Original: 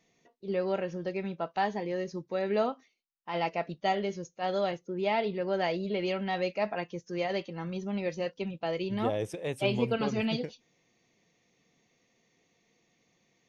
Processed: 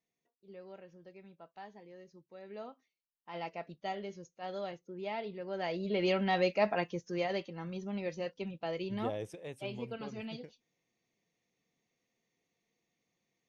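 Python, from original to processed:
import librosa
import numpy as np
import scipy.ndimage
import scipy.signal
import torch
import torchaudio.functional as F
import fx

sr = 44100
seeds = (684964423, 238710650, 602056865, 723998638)

y = fx.gain(x, sr, db=fx.line((2.33, -20.0), (3.32, -10.0), (5.47, -10.0), (6.08, 1.5), (6.82, 1.5), (7.54, -5.0), (8.98, -5.0), (9.66, -12.5)))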